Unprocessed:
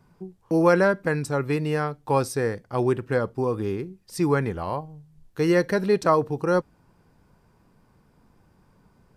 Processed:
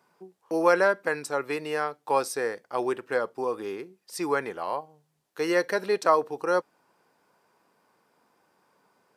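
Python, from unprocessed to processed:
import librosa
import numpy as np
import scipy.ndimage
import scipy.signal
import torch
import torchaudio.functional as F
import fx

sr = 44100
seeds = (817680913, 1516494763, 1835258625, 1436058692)

y = scipy.signal.sosfilt(scipy.signal.butter(2, 470.0, 'highpass', fs=sr, output='sos'), x)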